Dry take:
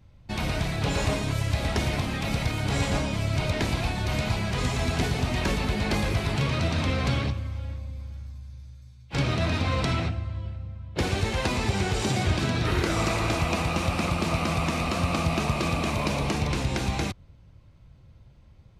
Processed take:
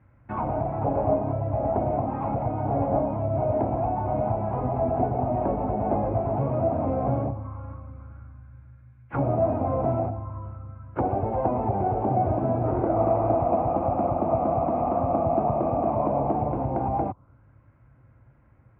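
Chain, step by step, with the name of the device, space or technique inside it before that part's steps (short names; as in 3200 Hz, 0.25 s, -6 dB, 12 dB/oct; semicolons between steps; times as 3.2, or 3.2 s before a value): envelope filter bass rig (envelope low-pass 710–1800 Hz down, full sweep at -22.5 dBFS; speaker cabinet 68–2300 Hz, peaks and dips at 78 Hz -8 dB, 120 Hz +3 dB, 170 Hz -9 dB, 280 Hz +4 dB, 420 Hz -3 dB, 1800 Hz -9 dB)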